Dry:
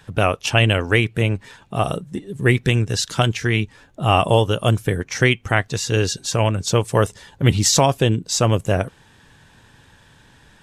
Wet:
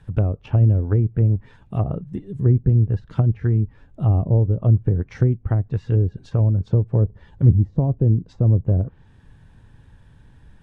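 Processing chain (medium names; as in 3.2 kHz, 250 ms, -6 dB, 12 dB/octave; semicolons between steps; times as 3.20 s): peaking EQ 10 kHz +12.5 dB 0.46 oct; low-pass that closes with the level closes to 430 Hz, closed at -14 dBFS; RIAA curve playback; trim -8.5 dB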